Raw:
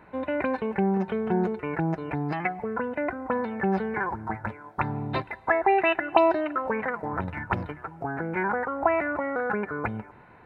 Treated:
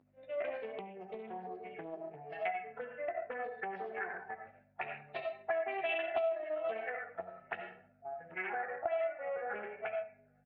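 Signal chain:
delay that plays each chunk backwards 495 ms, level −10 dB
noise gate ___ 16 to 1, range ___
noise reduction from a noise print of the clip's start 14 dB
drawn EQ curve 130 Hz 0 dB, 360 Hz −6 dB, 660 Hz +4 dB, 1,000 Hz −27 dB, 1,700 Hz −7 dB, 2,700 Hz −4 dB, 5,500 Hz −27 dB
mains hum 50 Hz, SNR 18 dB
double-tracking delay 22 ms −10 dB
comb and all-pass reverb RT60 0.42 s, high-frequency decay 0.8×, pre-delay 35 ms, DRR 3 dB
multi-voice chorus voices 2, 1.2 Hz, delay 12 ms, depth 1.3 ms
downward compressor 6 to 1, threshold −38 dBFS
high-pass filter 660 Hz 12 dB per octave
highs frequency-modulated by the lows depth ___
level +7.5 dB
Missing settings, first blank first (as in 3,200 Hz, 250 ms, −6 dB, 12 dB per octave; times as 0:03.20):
−28 dBFS, −18 dB, 0.18 ms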